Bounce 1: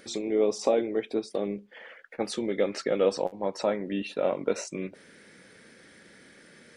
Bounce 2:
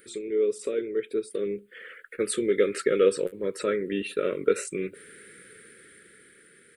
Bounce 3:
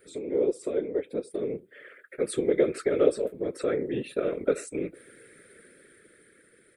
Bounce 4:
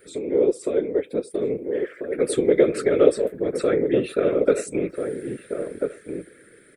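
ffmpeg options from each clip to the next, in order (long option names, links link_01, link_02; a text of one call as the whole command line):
ffmpeg -i in.wav -af "firequalizer=gain_entry='entry(130,0);entry(250,-5);entry(420,8);entry(780,-30);entry(1300,4);entry(3600,0);entry(5800,-10);entry(8400,12)':delay=0.05:min_phase=1,dynaudnorm=framelen=270:gausssize=11:maxgain=9dB,volume=-6dB" out.wav
ffmpeg -i in.wav -af "equalizer=frequency=390:width=0.61:gain=5.5,afftfilt=real='hypot(re,im)*cos(2*PI*random(0))':imag='hypot(re,im)*sin(2*PI*random(1))':win_size=512:overlap=0.75,bandreject=frequency=2900:width=12" out.wav
ffmpeg -i in.wav -filter_complex "[0:a]asplit=2[link_01][link_02];[link_02]adelay=1341,volume=-6dB,highshelf=frequency=4000:gain=-30.2[link_03];[link_01][link_03]amix=inputs=2:normalize=0,volume=6dB" out.wav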